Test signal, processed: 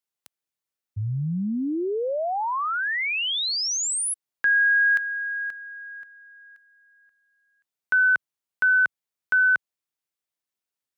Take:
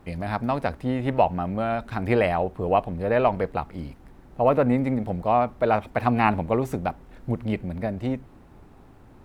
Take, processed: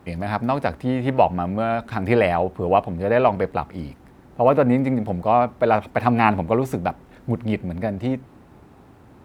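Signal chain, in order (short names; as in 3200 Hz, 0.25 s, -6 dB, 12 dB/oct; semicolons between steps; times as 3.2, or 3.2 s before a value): HPF 73 Hz; gain +3.5 dB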